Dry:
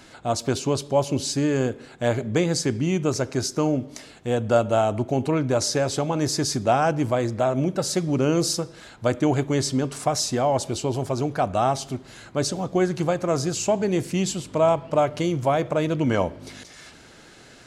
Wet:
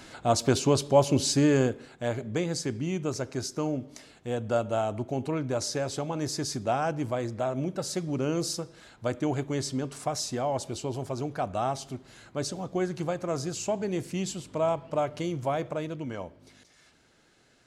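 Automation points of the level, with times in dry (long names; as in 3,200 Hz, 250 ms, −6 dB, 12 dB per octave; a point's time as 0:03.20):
0:01.53 +0.5 dB
0:02.04 −7.5 dB
0:15.64 −7.5 dB
0:16.16 −15 dB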